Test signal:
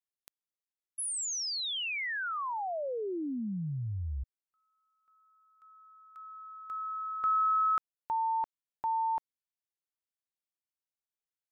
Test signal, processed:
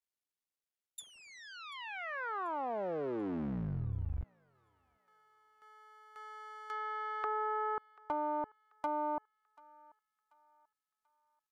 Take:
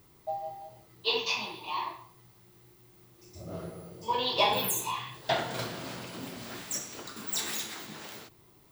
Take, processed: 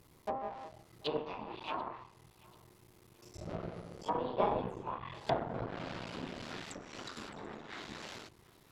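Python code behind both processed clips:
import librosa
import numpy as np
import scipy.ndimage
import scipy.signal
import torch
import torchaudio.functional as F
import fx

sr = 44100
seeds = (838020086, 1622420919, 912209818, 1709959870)

y = fx.cycle_switch(x, sr, every=3, mode='muted')
y = fx.env_lowpass_down(y, sr, base_hz=870.0, full_db=-31.5)
y = fx.echo_thinned(y, sr, ms=737, feedback_pct=44, hz=720.0, wet_db=-22.5)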